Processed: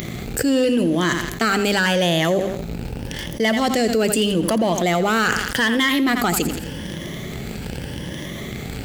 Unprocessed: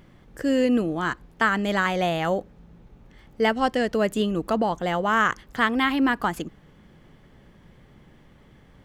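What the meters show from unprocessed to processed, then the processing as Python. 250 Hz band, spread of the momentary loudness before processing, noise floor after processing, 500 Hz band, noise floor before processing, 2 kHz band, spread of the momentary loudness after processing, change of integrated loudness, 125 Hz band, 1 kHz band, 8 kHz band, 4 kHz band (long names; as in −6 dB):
+5.0 dB, 7 LU, −31 dBFS, +5.0 dB, −54 dBFS, +4.5 dB, 13 LU, +3.0 dB, +9.0 dB, +1.0 dB, +17.5 dB, +10.5 dB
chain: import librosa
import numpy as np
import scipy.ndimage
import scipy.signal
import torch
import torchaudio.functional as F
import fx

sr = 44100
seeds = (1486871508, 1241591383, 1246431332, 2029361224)

y = fx.spec_ripple(x, sr, per_octave=1.2, drift_hz=0.83, depth_db=9)
y = fx.high_shelf(y, sr, hz=3600.0, db=9.0)
y = fx.hum_notches(y, sr, base_hz=50, count=6)
y = fx.echo_feedback(y, sr, ms=85, feedback_pct=34, wet_db=-14)
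y = fx.leveller(y, sr, passes=2)
y = scipy.signal.sosfilt(scipy.signal.butter(2, 50.0, 'highpass', fs=sr, output='sos'), y)
y = fx.peak_eq(y, sr, hz=1100.0, db=-8.5, octaves=1.1)
y = fx.env_flatten(y, sr, amount_pct=70)
y = y * librosa.db_to_amplitude(-4.5)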